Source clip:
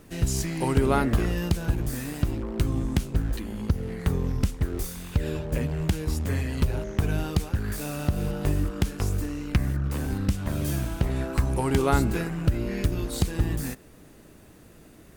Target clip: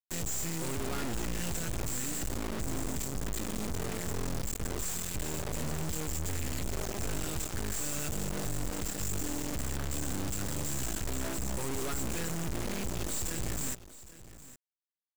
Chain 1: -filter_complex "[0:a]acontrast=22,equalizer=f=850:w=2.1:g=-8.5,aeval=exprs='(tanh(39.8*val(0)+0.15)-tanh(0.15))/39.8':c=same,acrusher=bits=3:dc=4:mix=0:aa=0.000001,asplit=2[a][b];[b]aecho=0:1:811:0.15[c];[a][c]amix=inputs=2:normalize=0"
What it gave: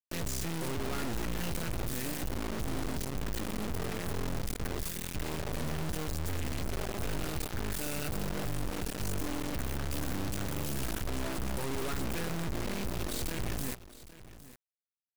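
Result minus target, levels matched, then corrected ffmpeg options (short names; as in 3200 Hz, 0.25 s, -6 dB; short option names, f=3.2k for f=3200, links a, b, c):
8000 Hz band -5.5 dB
-filter_complex "[0:a]acontrast=22,lowpass=f=7.5k:t=q:w=13,equalizer=f=850:w=2.1:g=-8.5,aeval=exprs='(tanh(39.8*val(0)+0.15)-tanh(0.15))/39.8':c=same,acrusher=bits=3:dc=4:mix=0:aa=0.000001,asplit=2[a][b];[b]aecho=0:1:811:0.15[c];[a][c]amix=inputs=2:normalize=0"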